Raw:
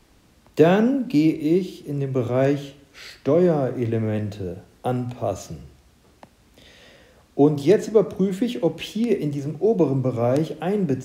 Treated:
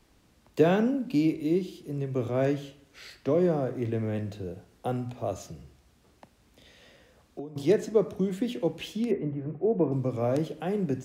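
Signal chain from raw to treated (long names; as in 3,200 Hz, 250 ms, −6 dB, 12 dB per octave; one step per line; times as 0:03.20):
0:05.50–0:07.56: downward compressor 10 to 1, threshold −30 dBFS, peak gain reduction 19.5 dB
0:09.11–0:09.92: low-pass filter 2,000 Hz 24 dB per octave
level −6.5 dB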